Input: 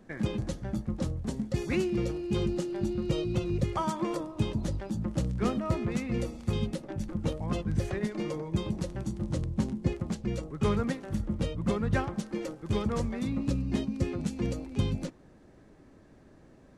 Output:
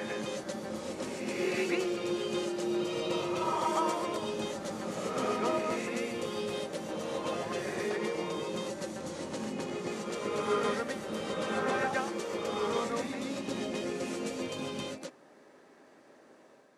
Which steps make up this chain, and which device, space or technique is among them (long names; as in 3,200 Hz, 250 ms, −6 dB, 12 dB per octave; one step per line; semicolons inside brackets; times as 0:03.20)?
ghost voice (reversed playback; convolution reverb RT60 2.0 s, pre-delay 108 ms, DRR −3.5 dB; reversed playback; high-pass filter 450 Hz 12 dB per octave)